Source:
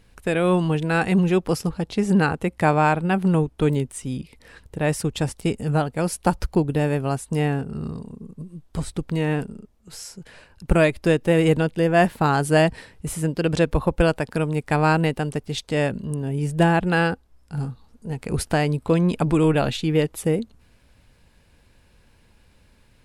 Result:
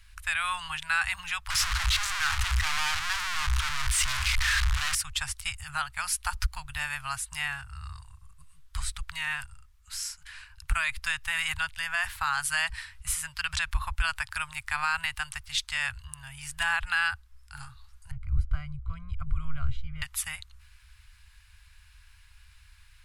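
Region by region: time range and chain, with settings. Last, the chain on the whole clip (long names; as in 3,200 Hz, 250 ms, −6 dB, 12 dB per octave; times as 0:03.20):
0:01.50–0:04.95: sign of each sample alone + high-frequency loss of the air 52 metres
0:18.11–0:20.02: moving average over 50 samples + low-shelf EQ 270 Hz +12 dB
whole clip: inverse Chebyshev band-stop filter 210–450 Hz, stop band 70 dB; parametric band 280 Hz +6.5 dB 0.7 octaves; brickwall limiter −19.5 dBFS; level +3 dB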